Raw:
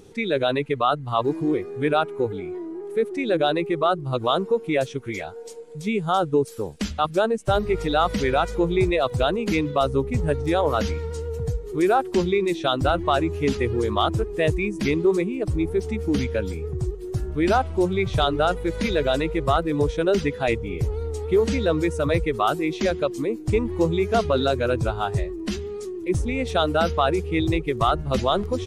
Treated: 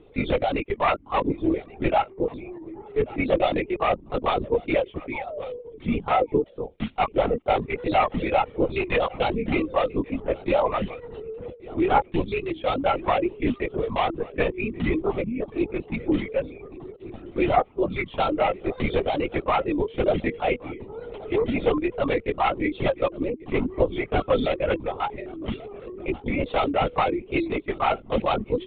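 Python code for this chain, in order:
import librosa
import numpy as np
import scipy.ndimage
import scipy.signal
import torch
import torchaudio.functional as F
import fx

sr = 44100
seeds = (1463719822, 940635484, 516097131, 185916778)

y = fx.tracing_dist(x, sr, depth_ms=0.24)
y = scipy.signal.sosfilt(scipy.signal.cheby1(2, 1.0, 2600.0, 'lowpass', fs=sr, output='sos'), y)
y = fx.dereverb_blind(y, sr, rt60_s=0.88)
y = scipy.signal.sosfilt(scipy.signal.butter(6, 180.0, 'highpass', fs=sr, output='sos'), y)
y = fx.peak_eq(y, sr, hz=1600.0, db=-11.5, octaves=0.28)
y = y + 0.44 * np.pad(y, (int(3.8 * sr / 1000.0), 0))[:len(y)]
y = fx.spec_paint(y, sr, seeds[0], shape='fall', start_s=5.13, length_s=0.44, low_hz=440.0, high_hz=910.0, level_db=-34.0)
y = fx.vibrato(y, sr, rate_hz=2.2, depth_cents=92.0)
y = y + 10.0 ** (-21.0 / 20.0) * np.pad(y, (int(1133 * sr / 1000.0), 0))[:len(y)]
y = fx.lpc_vocoder(y, sr, seeds[1], excitation='whisper', order=16)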